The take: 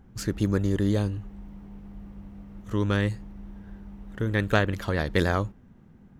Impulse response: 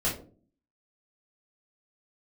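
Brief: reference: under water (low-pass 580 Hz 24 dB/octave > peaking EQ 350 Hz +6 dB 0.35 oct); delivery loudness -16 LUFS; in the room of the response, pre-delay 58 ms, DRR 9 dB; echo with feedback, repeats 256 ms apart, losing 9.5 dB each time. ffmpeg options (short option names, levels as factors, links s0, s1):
-filter_complex "[0:a]aecho=1:1:256|512|768|1024:0.335|0.111|0.0365|0.012,asplit=2[s0][s1];[1:a]atrim=start_sample=2205,adelay=58[s2];[s1][s2]afir=irnorm=-1:irlink=0,volume=0.133[s3];[s0][s3]amix=inputs=2:normalize=0,lowpass=f=580:w=0.5412,lowpass=f=580:w=1.3066,equalizer=f=350:t=o:w=0.35:g=6,volume=2.99"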